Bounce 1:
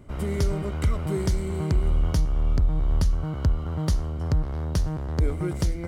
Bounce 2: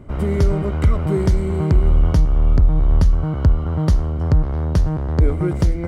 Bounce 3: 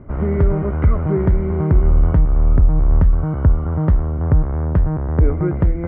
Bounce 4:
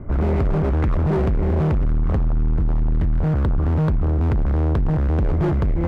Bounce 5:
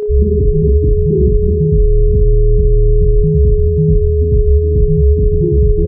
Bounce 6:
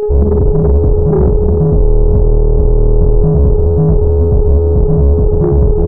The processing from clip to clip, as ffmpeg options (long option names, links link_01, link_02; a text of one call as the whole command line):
ffmpeg -i in.wav -af "highshelf=frequency=3000:gain=-11.5,volume=8dB" out.wav
ffmpeg -i in.wav -af "lowpass=frequency=2000:width=0.5412,lowpass=frequency=2000:width=1.3066,volume=1dB" out.wav
ffmpeg -i in.wav -filter_complex "[0:a]lowshelf=frequency=71:gain=7.5,acrossover=split=640[link_01][link_02];[link_01]alimiter=limit=-9.5dB:level=0:latency=1:release=18[link_03];[link_03][link_02]amix=inputs=2:normalize=0,asoftclip=type=hard:threshold=-19dB,volume=2.5dB" out.wav
ffmpeg -i in.wav -filter_complex "[0:a]afftfilt=real='re*gte(hypot(re,im),0.447)':imag='im*gte(hypot(re,im),0.447)':win_size=1024:overlap=0.75,aeval=exprs='val(0)+0.0631*sin(2*PI*420*n/s)':channel_layout=same,asplit=2[link_01][link_02];[link_02]aecho=0:1:43|75:0.531|0.266[link_03];[link_01][link_03]amix=inputs=2:normalize=0,volume=7dB" out.wav
ffmpeg -i in.wav -af "aeval=exprs='(tanh(2.82*val(0)+0.4)-tanh(0.4))/2.82':channel_layout=same,volume=5dB" out.wav